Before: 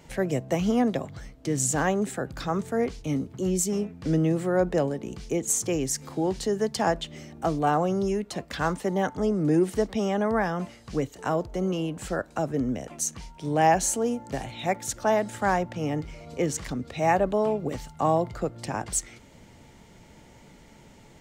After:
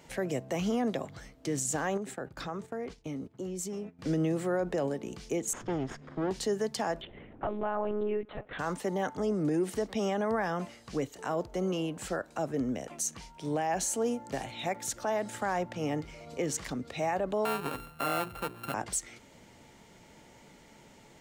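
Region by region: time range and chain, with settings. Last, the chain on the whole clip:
0:01.97–0:03.99: noise gate −39 dBFS, range −12 dB + high-shelf EQ 3,800 Hz −6 dB + downward compressor 5 to 1, threshold −30 dBFS
0:05.53–0:06.31: lower of the sound and its delayed copy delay 0.59 ms + head-to-tape spacing loss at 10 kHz 30 dB
0:07.01–0:08.59: band-pass filter 130–2,400 Hz + one-pitch LPC vocoder at 8 kHz 210 Hz
0:17.45–0:18.74: samples sorted by size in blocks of 32 samples + parametric band 5,900 Hz −14 dB 0.79 octaves + mains-hum notches 60/120/180/240/300/360/420 Hz
whole clip: low-shelf EQ 160 Hz −9.5 dB; brickwall limiter −20.5 dBFS; level −1.5 dB

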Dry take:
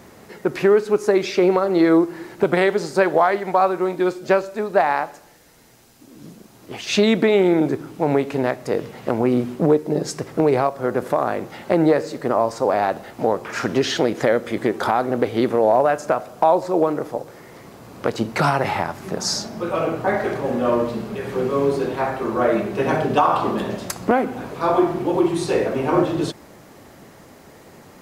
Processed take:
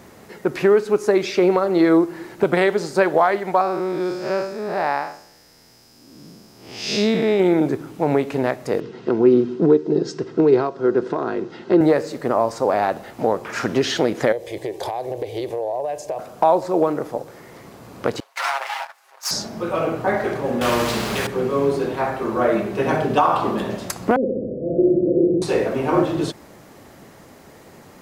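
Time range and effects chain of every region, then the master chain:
0:03.61–0:07.40: spectrum smeared in time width 157 ms + parametric band 5,100 Hz +14 dB 0.23 octaves
0:08.80–0:11.81: loudspeaker in its box 120–5,700 Hz, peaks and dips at 370 Hz +9 dB, 790 Hz −9 dB, 2,200 Hz −7 dB + notch comb filter 580 Hz
0:14.32–0:16.19: phaser with its sweep stopped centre 560 Hz, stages 4 + downward compressor 4 to 1, threshold −22 dBFS
0:18.20–0:19.31: lower of the sound and its delayed copy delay 7.4 ms + high-pass filter 780 Hz 24 dB per octave + noise gate −30 dBFS, range −13 dB
0:20.61–0:21.27: running median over 3 samples + every bin compressed towards the loudest bin 2 to 1
0:24.16–0:25.42: Butterworth low-pass 600 Hz 96 dB per octave + flutter between parallel walls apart 10.9 metres, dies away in 1.5 s
whole clip: no processing

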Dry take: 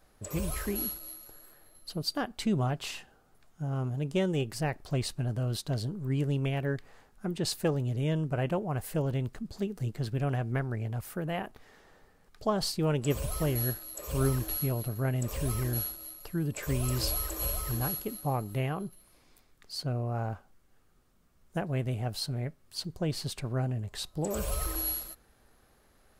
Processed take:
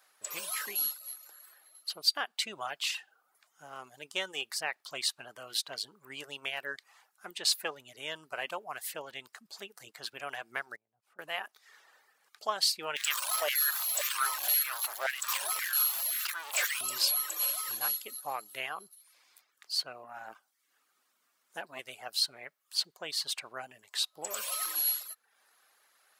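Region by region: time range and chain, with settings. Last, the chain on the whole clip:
0:10.76–0:11.19: resonant band-pass 170 Hz, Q 0.89 + downward compressor 5 to 1, threshold −49 dBFS
0:12.96–0:16.81: converter with a step at zero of −31.5 dBFS + auto-filter high-pass saw down 1.9 Hz 580–2,000 Hz
0:20.04–0:21.79: parametric band 270 Hz +8.5 dB 0.53 octaves + saturating transformer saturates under 350 Hz
whole clip: high-pass filter 1,100 Hz 12 dB per octave; reverb reduction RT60 0.59 s; dynamic equaliser 3,600 Hz, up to +4 dB, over −53 dBFS, Q 1.2; level +4 dB

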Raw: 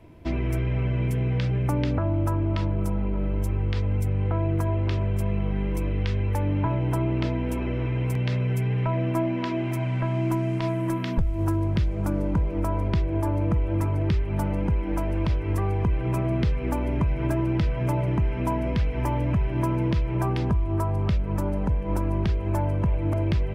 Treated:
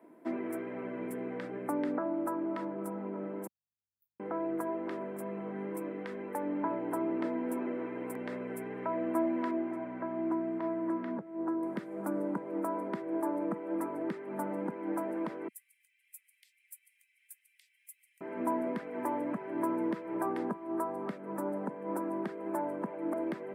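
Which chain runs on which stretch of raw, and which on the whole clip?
0:03.47–0:04.20: inverse Chebyshev band-stop filter 220–6,300 Hz, stop band 80 dB + double-tracking delay 35 ms −12 dB
0:09.51–0:11.63: high-pass filter 45 Hz + head-to-tape spacing loss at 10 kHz 23 dB
0:15.48–0:18.21: Butterworth high-pass 2,200 Hz 48 dB per octave + first difference
whole clip: Butterworth high-pass 220 Hz 36 dB per octave; flat-topped bell 4,000 Hz −14.5 dB; level −4 dB

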